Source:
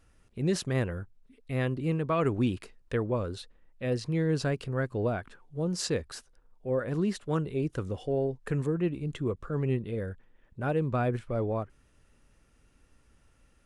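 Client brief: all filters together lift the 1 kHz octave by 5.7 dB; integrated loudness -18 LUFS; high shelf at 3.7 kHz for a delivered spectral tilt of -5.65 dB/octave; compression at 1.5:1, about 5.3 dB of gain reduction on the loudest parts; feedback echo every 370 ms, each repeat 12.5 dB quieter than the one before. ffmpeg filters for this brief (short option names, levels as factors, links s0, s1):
-af "equalizer=f=1000:t=o:g=7,highshelf=f=3700:g=6.5,acompressor=threshold=0.0158:ratio=1.5,aecho=1:1:370|740|1110:0.237|0.0569|0.0137,volume=6.31"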